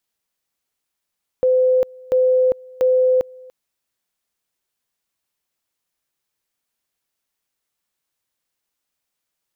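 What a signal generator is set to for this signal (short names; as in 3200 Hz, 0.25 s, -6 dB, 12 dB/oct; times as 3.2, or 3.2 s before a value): two-level tone 511 Hz -12 dBFS, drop 25.5 dB, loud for 0.40 s, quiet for 0.29 s, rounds 3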